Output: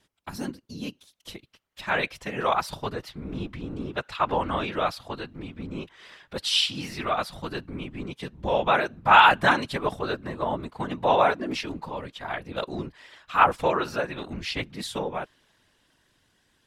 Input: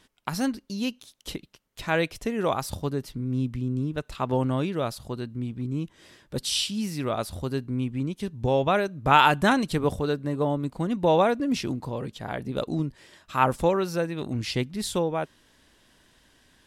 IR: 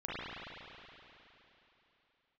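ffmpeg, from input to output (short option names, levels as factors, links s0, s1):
-filter_complex "[0:a]afftfilt=real='hypot(re,im)*cos(2*PI*random(0))':imag='hypot(re,im)*sin(2*PI*random(1))':win_size=512:overlap=0.75,acrossover=split=680|4200[s0][s1][s2];[s1]dynaudnorm=f=240:g=17:m=5.62[s3];[s0][s3][s2]amix=inputs=3:normalize=0,volume=0.891"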